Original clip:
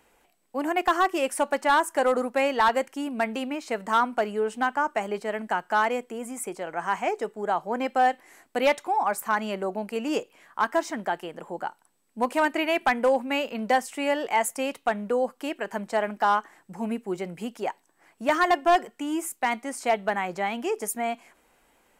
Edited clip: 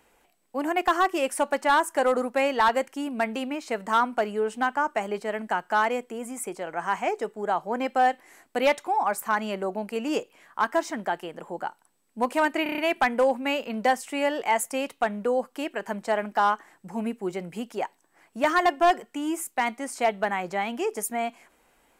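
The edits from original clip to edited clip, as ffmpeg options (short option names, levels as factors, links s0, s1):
-filter_complex "[0:a]asplit=6[s0][s1][s2][s3][s4][s5];[s0]atrim=end=12.662[s6];[s1]atrim=start=12.628:end=12.662[s7];[s2]atrim=start=12.628:end=12.662[s8];[s3]atrim=start=12.628:end=12.662[s9];[s4]atrim=start=12.628:end=12.662[s10];[s5]atrim=start=12.628[s11];[s6][s7]acrossfade=d=0.004:c1=hsin:c2=hsin[s12];[s12][s8]acrossfade=d=0.004:c1=hsin:c2=hsin[s13];[s13][s9]acrossfade=d=0.004:c1=hsin:c2=hsin[s14];[s14][s10]acrossfade=d=0.004:c1=hsin:c2=hsin[s15];[s15][s11]acrossfade=d=0.004:c1=hsin:c2=hsin"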